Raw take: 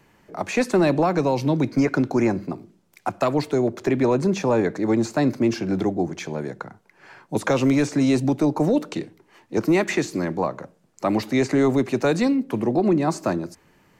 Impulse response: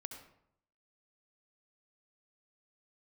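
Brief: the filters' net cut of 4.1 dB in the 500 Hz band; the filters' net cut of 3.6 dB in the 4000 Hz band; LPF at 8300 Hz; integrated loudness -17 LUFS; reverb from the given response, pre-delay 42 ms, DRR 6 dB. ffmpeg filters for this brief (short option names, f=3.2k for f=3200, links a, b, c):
-filter_complex "[0:a]lowpass=8.3k,equalizer=f=500:t=o:g=-5.5,equalizer=f=4k:t=o:g=-4,asplit=2[a][b];[1:a]atrim=start_sample=2205,adelay=42[c];[b][c]afir=irnorm=-1:irlink=0,volume=-2.5dB[d];[a][d]amix=inputs=2:normalize=0,volume=6.5dB"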